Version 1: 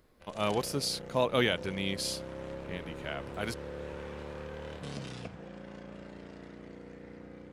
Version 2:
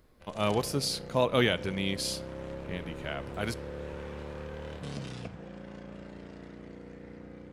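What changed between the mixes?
speech: send on
master: add low-shelf EQ 210 Hz +4 dB

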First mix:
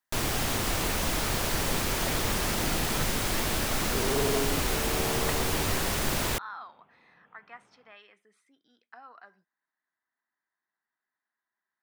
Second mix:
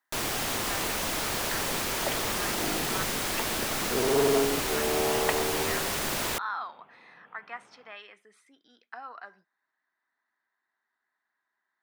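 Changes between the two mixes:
speech +7.5 dB
second sound +7.5 dB
master: add low-shelf EQ 160 Hz −12 dB

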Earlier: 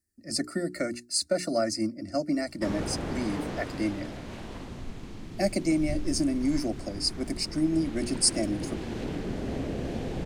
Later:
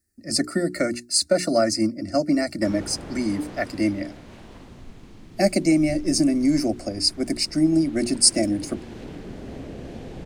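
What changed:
speech +7.0 dB
background −4.0 dB

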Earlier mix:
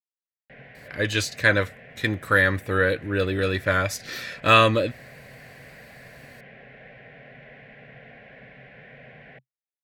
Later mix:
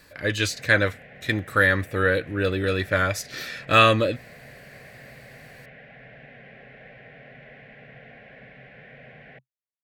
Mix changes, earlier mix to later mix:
speech: entry −0.75 s
master: add notch filter 1,000 Hz, Q 21

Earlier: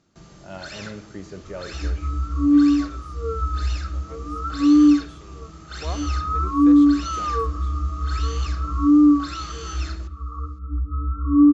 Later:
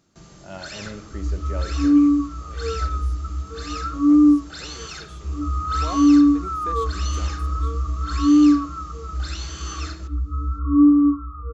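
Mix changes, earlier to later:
second sound: entry −0.60 s
master: remove high-frequency loss of the air 50 metres

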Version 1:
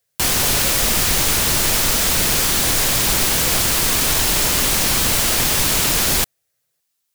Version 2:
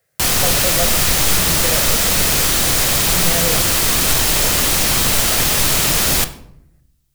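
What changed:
speech +10.5 dB
reverb: on, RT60 0.70 s

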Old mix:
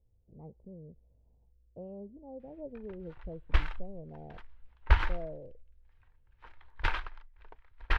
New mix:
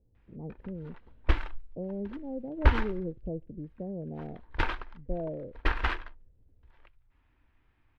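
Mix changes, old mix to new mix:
background: entry −2.25 s
master: add parametric band 260 Hz +12 dB 2 octaves

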